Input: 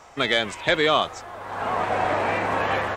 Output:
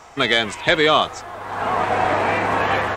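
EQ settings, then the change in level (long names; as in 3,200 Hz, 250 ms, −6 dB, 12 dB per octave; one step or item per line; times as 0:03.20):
notch filter 560 Hz, Q 12
+4.5 dB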